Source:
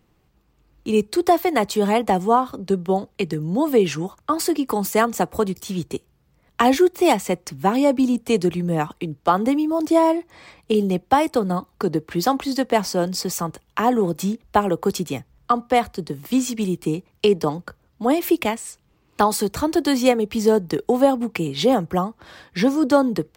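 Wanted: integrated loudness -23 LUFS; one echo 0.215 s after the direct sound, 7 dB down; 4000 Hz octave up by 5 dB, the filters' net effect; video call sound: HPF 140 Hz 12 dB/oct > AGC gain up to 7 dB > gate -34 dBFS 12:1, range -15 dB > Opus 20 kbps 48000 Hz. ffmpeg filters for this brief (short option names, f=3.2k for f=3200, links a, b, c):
-af "highpass=140,equalizer=f=4k:t=o:g=6.5,aecho=1:1:215:0.447,dynaudnorm=m=7dB,agate=range=-15dB:threshold=-34dB:ratio=12,volume=-3dB" -ar 48000 -c:a libopus -b:a 20k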